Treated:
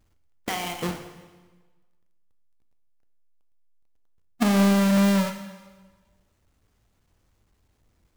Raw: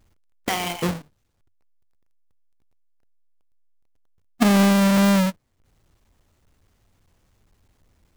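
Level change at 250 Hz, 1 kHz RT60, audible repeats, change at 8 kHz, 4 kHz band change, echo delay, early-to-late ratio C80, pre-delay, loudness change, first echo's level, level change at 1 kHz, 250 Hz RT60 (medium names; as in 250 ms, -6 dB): -3.0 dB, 1.3 s, no echo, -4.0 dB, -4.0 dB, no echo, 10.5 dB, 4 ms, -3.0 dB, no echo, -4.0 dB, 1.3 s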